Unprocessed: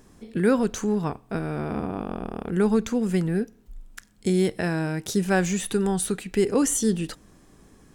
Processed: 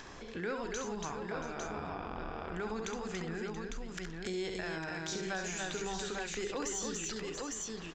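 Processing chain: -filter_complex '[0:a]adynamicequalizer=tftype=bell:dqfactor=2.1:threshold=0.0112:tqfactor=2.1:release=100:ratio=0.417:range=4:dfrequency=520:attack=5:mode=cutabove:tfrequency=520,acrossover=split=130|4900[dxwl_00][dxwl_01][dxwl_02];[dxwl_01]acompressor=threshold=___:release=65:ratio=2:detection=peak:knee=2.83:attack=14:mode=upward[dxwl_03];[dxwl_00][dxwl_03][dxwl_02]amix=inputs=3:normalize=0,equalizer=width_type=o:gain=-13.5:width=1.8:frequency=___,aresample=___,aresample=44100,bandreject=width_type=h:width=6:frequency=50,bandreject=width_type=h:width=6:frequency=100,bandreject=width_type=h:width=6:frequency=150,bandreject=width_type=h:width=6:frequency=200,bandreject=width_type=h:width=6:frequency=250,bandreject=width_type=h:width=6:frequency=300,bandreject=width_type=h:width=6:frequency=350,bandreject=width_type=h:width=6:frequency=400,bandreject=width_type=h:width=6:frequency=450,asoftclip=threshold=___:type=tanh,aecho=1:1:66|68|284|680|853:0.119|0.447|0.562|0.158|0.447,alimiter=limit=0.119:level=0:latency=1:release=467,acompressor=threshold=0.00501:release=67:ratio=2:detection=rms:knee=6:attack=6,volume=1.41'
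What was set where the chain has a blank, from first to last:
0.0158, 200, 16000, 0.15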